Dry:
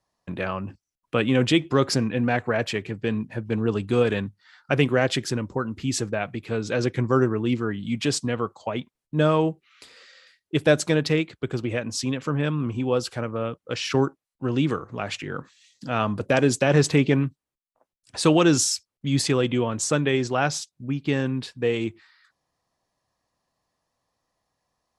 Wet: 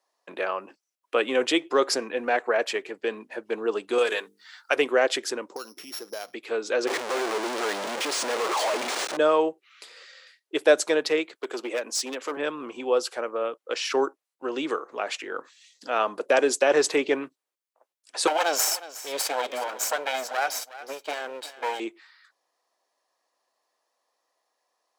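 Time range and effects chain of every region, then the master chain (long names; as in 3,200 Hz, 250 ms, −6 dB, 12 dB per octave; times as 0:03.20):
0:03.98–0:04.76: spectral tilt +3 dB per octave + mains-hum notches 50/100/150/200/250/300/350/400/450 Hz
0:05.56–0:06.34: samples sorted by size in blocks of 8 samples + downward compressor 3 to 1, threshold −34 dBFS
0:06.87–0:09.17: sign of each sample alone + linearly interpolated sample-rate reduction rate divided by 3×
0:11.35–0:12.37: high-pass filter 190 Hz 24 dB per octave + high-shelf EQ 5,500 Hz +5 dB + hard clipping −22.5 dBFS
0:18.27–0:21.80: lower of the sound and its delayed copy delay 1.3 ms + high-pass filter 440 Hz 6 dB per octave + single-tap delay 365 ms −16.5 dB
whole clip: high-pass filter 380 Hz 24 dB per octave; dynamic equaliser 3,000 Hz, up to −3 dB, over −41 dBFS, Q 0.71; level +2 dB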